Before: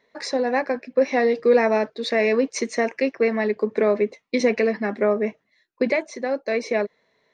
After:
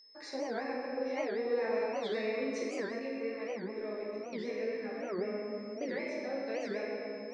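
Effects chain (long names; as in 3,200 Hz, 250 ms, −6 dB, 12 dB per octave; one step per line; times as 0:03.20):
parametric band 3,400 Hz +2.5 dB
notch filter 690 Hz, Q 21
convolution reverb RT60 2.4 s, pre-delay 6 ms, DRR −5 dB
downward compressor 1.5 to 1, threshold −18 dBFS, peak gain reduction 4.5 dB
steady tone 5,200 Hz −36 dBFS
high-shelf EQ 4,800 Hz −4.5 dB
tuned comb filter 68 Hz, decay 1.7 s, harmonics all, mix 70%
0:02.99–0:05.19: chorus effect 2.2 Hz, delay 15.5 ms, depth 2.9 ms
wow of a warped record 78 rpm, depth 250 cents
level −8.5 dB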